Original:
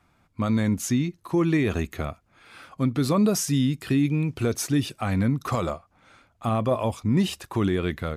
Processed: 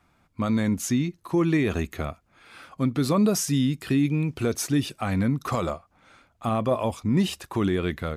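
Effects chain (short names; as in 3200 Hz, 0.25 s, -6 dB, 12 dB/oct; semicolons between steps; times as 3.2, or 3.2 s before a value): bell 110 Hz -3.5 dB 0.43 oct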